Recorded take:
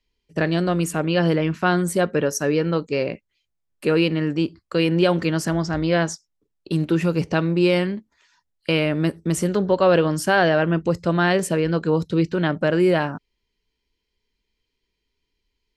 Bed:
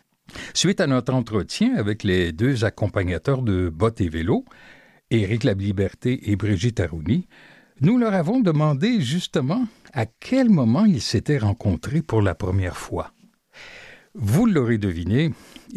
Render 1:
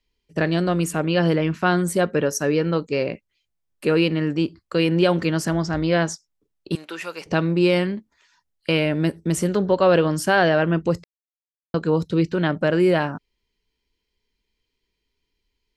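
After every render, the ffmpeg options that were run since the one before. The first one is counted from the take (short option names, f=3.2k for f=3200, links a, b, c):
-filter_complex "[0:a]asettb=1/sr,asplit=3[a][b][c];[a]atrim=end=6.754[d];[b]atrim=start=6.75:end=7.26,asetpts=PTS-STARTPTS,afade=t=in:d=0.004:c=qsin,afade=t=out:st=0.506:d=0.004:c=qsin,highpass=830[e];[c]atrim=start=7.256[f];[d][e]acrossfade=d=0.004:c1=hsin:c2=qsin[g];[g][f]acrossfade=d=0.004:c1=qsin:c2=hsin,asettb=1/sr,asplit=3[h][i][j];[h]atrim=end=8.774[k];[i]atrim=start=8.77:end=9.33,asetpts=PTS-STARTPTS,afade=t=in:d=0.004:c=qsin,afade=t=out:st=0.556:d=0.004:c=qsin,bandreject=f=1.2k:w=6.3[l];[j]atrim=start=9.326[m];[k][l]acrossfade=d=0.004:c1=hsin:c2=qsin[n];[n][m]acrossfade=d=0.004:c1=qsin:c2=hsin,asplit=3[o][p][q];[o]atrim=end=11.04,asetpts=PTS-STARTPTS,afade=t=out:st=11.036:d=0.004:c=hsin[r];[p]atrim=start=11.04:end=11.74,asetpts=PTS-STARTPTS,volume=0[s];[q]atrim=start=11.74,asetpts=PTS-STARTPTS,afade=t=in:d=0.004:c=hsin[t];[r][s][t]concat=n=3:v=0:a=1"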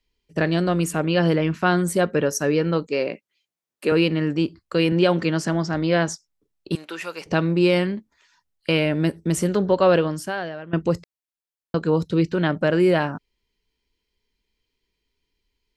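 -filter_complex "[0:a]asettb=1/sr,asplit=3[a][b][c];[a]atrim=end=2.874[d];[b]atrim=start=2.87:end=3.92,asetpts=PTS-STARTPTS,afade=t=in:d=0.004:c=qsin,afade=t=out:st=1.046:d=0.004:c=qsin,highpass=230[e];[c]atrim=start=3.916[f];[d][e]acrossfade=d=0.004:c1=hsin:c2=qsin[g];[g][f]acrossfade=d=0.004:c1=qsin:c2=hsin,asettb=1/sr,asplit=3[h][i][j];[h]atrim=end=4.924[k];[i]atrim=start=4.92:end=6.08,asetpts=PTS-STARTPTS,afade=t=in:d=0.004:c=qsin,afade=t=out:st=1.156:d=0.004:c=qsin,highpass=110,lowpass=7.7k[l];[j]atrim=start=6.076[m];[k][l]acrossfade=d=0.004:c1=hsin:c2=qsin[n];[n][m]acrossfade=d=0.004:c1=qsin:c2=hsin,asplit=2[o][p];[o]atrim=end=10.73,asetpts=PTS-STARTPTS,afade=t=out:st=9.9:d=0.83:c=qua:silence=0.125893[q];[p]atrim=start=10.73,asetpts=PTS-STARTPTS,afade=t=in:d=0.004:c=hsin:silence=0.125893[r];[q][r]concat=n=2:v=0:a=1"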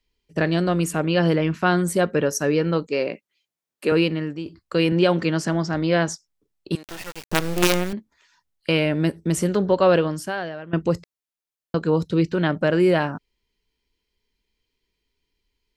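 -filter_complex "[0:a]asettb=1/sr,asplit=3[a][b][c];[a]atrim=end=6.834[d];[b]atrim=start=6.83:end=7.93,asetpts=PTS-STARTPTS,afade=t=in:d=0.004:c=qsin,afade=t=out:st=1.096:d=0.004:c=qsin,acrusher=bits=3:dc=4:mix=0:aa=0.000001[e];[c]atrim=start=7.926[f];[d][e]acrossfade=d=0.004:c1=hsin:c2=qsin[g];[g][f]acrossfade=d=0.004:c1=qsin:c2=hsin,asplit=2[h][i];[h]atrim=end=4.46,asetpts=PTS-STARTPTS,afade=t=out:st=3.98:d=0.48:silence=0.237137[j];[i]atrim=start=4.46,asetpts=PTS-STARTPTS,afade=t=in:d=0.004:c=hsin:silence=0.237137[k];[j][k]concat=n=2:v=0:a=1"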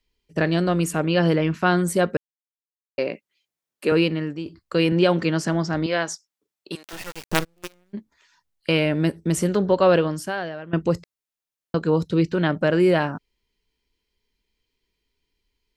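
-filter_complex "[0:a]asettb=1/sr,asplit=3[a][b][c];[a]atrim=end=5.864[d];[b]atrim=start=5.86:end=6.93,asetpts=PTS-STARTPTS,afade=t=in:d=0.004:c=qsin,afade=t=out:st=1.066:d=0.004:c=qsin,highpass=f=620:p=1[e];[c]atrim=start=6.926[f];[d][e]acrossfade=d=0.004:c1=hsin:c2=qsin[g];[g][f]acrossfade=d=0.004:c1=qsin:c2=hsin,asplit=3[h][i][j];[h]afade=t=out:st=7.43:d=0.02[k];[i]agate=range=-38dB:threshold=-14dB:ratio=16:release=100:detection=peak,afade=t=in:st=7.43:d=0.02,afade=t=out:st=7.93:d=0.02[l];[j]afade=t=in:st=7.93:d=0.02[m];[k][l][m]amix=inputs=3:normalize=0,asplit=3[n][o][p];[n]atrim=end=2.17,asetpts=PTS-STARTPTS,afade=t=out:st=2.166:d=0.004:c=hsin[q];[o]atrim=start=2.17:end=2.98,asetpts=PTS-STARTPTS,volume=0[r];[p]atrim=start=2.98,asetpts=PTS-STARTPTS,afade=t=in:d=0.004:c=hsin[s];[q][r][s]concat=n=3:v=0:a=1"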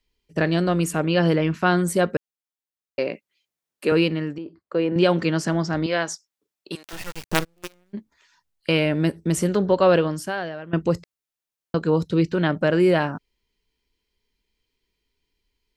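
-filter_complex "[0:a]asettb=1/sr,asplit=3[a][b][c];[a]atrim=end=4.384[d];[b]atrim=start=4.38:end=4.96,asetpts=PTS-STARTPTS,afade=t=in:d=0.004:c=qsin,afade=t=out:st=0.576:d=0.004:c=qsin,bandpass=f=560:t=q:w=0.74[e];[c]atrim=start=4.956[f];[d][e]acrossfade=d=0.004:c1=hsin:c2=qsin[g];[g][f]acrossfade=d=0.004:c1=qsin:c2=hsin,asettb=1/sr,asplit=3[h][i][j];[h]atrim=end=6.724[k];[i]atrim=start=6.72:end=7.29,asetpts=PTS-STARTPTS,afade=t=in:d=0.004:c=qsin,afade=t=out:st=0.566:d=0.004:c=qsin,asubboost=boost=8.5:cutoff=230[l];[j]atrim=start=7.286[m];[k][l]acrossfade=d=0.004:c1=hsin:c2=qsin[n];[n][m]acrossfade=d=0.004:c1=qsin:c2=hsin"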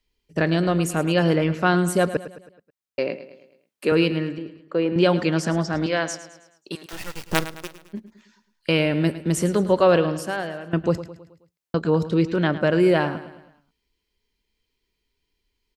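-af "aecho=1:1:107|214|321|428|535:0.2|0.0978|0.0479|0.0235|0.0115"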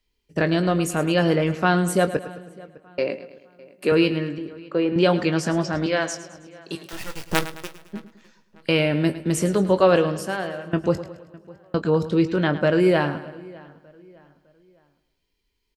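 -filter_complex "[0:a]asplit=2[a][b];[b]adelay=21,volume=-11dB[c];[a][c]amix=inputs=2:normalize=0,asplit=2[d][e];[e]adelay=607,lowpass=f=3.2k:p=1,volume=-22.5dB,asplit=2[f][g];[g]adelay=607,lowpass=f=3.2k:p=1,volume=0.38,asplit=2[h][i];[i]adelay=607,lowpass=f=3.2k:p=1,volume=0.38[j];[d][f][h][j]amix=inputs=4:normalize=0"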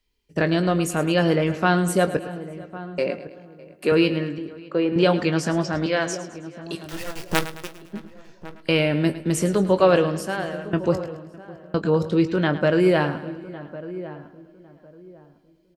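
-filter_complex "[0:a]asplit=2[a][b];[b]adelay=1104,lowpass=f=1k:p=1,volume=-14.5dB,asplit=2[c][d];[d]adelay=1104,lowpass=f=1k:p=1,volume=0.25,asplit=2[e][f];[f]adelay=1104,lowpass=f=1k:p=1,volume=0.25[g];[a][c][e][g]amix=inputs=4:normalize=0"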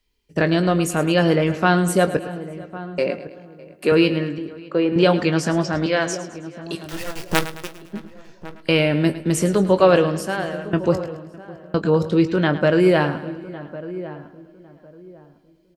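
-af "volume=2.5dB"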